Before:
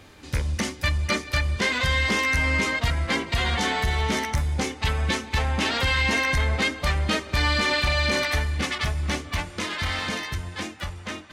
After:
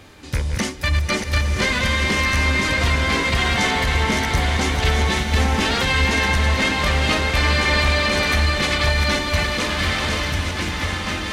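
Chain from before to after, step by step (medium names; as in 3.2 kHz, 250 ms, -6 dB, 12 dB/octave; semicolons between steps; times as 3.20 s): chunks repeated in reverse 457 ms, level -6.5 dB; peak limiter -15 dBFS, peak gain reduction 4.5 dB; swelling reverb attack 1280 ms, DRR 2.5 dB; trim +4 dB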